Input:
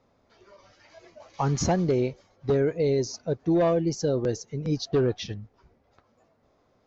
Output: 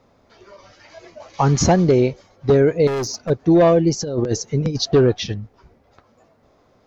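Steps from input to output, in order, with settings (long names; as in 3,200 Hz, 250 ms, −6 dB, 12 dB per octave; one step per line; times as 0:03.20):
0:02.87–0:03.30: hard clipping −29.5 dBFS, distortion −15 dB
0:04.01–0:04.94: compressor whose output falls as the input rises −28 dBFS, ratio −0.5
level +9 dB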